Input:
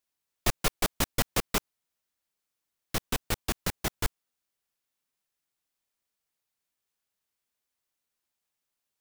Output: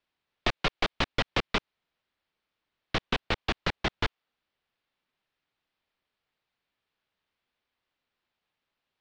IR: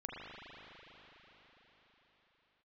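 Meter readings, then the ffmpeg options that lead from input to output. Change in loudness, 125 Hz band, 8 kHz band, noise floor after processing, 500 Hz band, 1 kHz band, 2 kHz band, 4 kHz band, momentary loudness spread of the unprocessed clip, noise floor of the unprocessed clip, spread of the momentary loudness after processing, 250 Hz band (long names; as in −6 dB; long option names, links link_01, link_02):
+0.5 dB, −0.5 dB, −15.5 dB, below −85 dBFS, +1.5 dB, +2.5 dB, +4.0 dB, +2.5 dB, 7 LU, below −85 dBFS, 5 LU, +0.5 dB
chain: -filter_complex "[0:a]lowpass=frequency=3900:width=0.5412,lowpass=frequency=3900:width=1.3066,acrossover=split=380|1900[link_01][link_02][link_03];[link_01]acompressor=threshold=-37dB:ratio=4[link_04];[link_02]acompressor=threshold=-37dB:ratio=4[link_05];[link_03]acompressor=threshold=-35dB:ratio=4[link_06];[link_04][link_05][link_06]amix=inputs=3:normalize=0,volume=7dB"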